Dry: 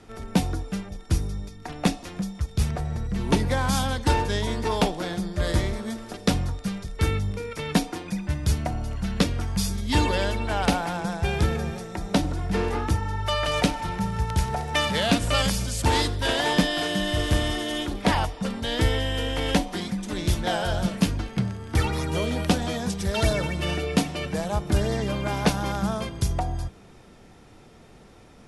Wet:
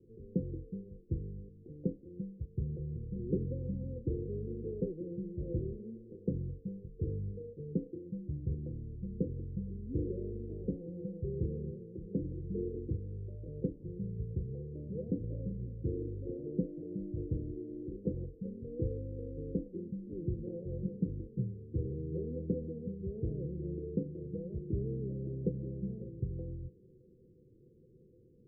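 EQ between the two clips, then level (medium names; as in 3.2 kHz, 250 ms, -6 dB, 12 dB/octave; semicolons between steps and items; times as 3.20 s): rippled Chebyshev low-pass 520 Hz, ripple 9 dB; bass shelf 170 Hz -6.5 dB; -3.0 dB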